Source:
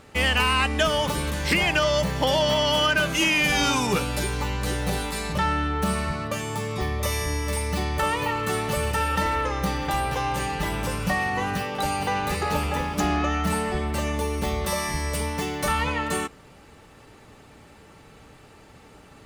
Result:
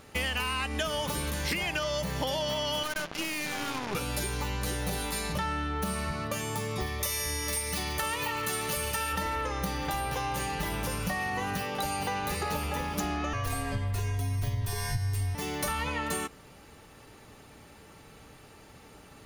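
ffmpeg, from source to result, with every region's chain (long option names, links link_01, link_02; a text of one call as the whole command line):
ffmpeg -i in.wav -filter_complex "[0:a]asettb=1/sr,asplit=3[link_01][link_02][link_03];[link_01]atrim=end=2.834[link_04];[link_02]atrim=start=2.83:end=3.95,asetpts=PTS-STARTPTS,afade=type=in:duration=0.004:curve=qsin,afade=type=out:start_time=1.116:duration=0.004:curve=qsin,highpass=150,lowpass=2200,acrusher=bits=3:mix=0:aa=0.5,aeval=exprs='(tanh(7.94*val(0)+0.75)-tanh(0.75))/7.94':channel_layout=same[link_05];[link_03]atrim=start=3.946[link_06];[link_04][link_05]acrossfade=duration=0.004:curve1=hsin:curve2=qsin[link_07];[link_07][link_06]acrossfade=duration=0.004:curve1=qsin:curve2=hsin,asettb=1/sr,asplit=3[link_08][link_09][link_10];[link_08]atrim=end=6.864[link_11];[link_09]atrim=start=6.86:end=9.13,asetpts=PTS-STARTPTS,afade=type=in:duration=0.004:curve=qsin,afade=type=out:start_time=2.266:duration=0.004:curve=qsin,tiltshelf=frequency=1400:gain=-4,aecho=1:1:143:0.211,atrim=end_sample=100107[link_12];[link_10]atrim=start=9.126[link_13];[link_11][link_12]acrossfade=duration=0.004:curve1=hsin:curve2=qsin[link_14];[link_14][link_13]acrossfade=duration=0.004:curve1=qsin:curve2=hsin,asettb=1/sr,asplit=3[link_15][link_16][link_17];[link_15]atrim=end=13.334[link_18];[link_16]atrim=start=13.33:end=15.35,asetpts=PTS-STARTPTS,afade=type=in:duration=0.004:curve=qsin,afade=type=out:start_time=2.016:duration=0.004:curve=qsin,asubboost=boost=9.5:cutoff=180,afreqshift=-170[link_19];[link_17]atrim=start=15.346[link_20];[link_18][link_19]acrossfade=duration=0.004:curve1=hsin:curve2=qsin[link_21];[link_21][link_20]acrossfade=duration=0.004:curve1=qsin:curve2=hsin,highshelf=frequency=6400:gain=8.5,bandreject=frequency=7900:width=7.4,acompressor=threshold=-25dB:ratio=6,volume=-3dB" out.wav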